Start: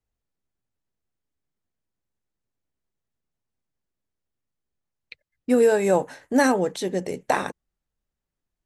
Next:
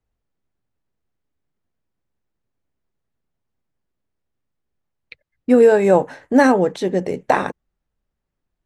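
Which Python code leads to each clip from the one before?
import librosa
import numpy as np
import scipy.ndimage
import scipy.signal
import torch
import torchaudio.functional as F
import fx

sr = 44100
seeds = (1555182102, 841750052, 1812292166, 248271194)

y = fx.lowpass(x, sr, hz=2200.0, slope=6)
y = y * librosa.db_to_amplitude(6.5)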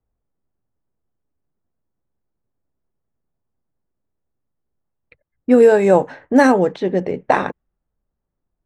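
y = fx.env_lowpass(x, sr, base_hz=1200.0, full_db=-9.0)
y = y * librosa.db_to_amplitude(1.0)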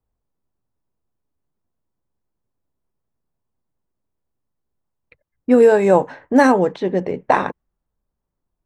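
y = fx.peak_eq(x, sr, hz=1000.0, db=4.5, octaves=0.34)
y = y * librosa.db_to_amplitude(-1.0)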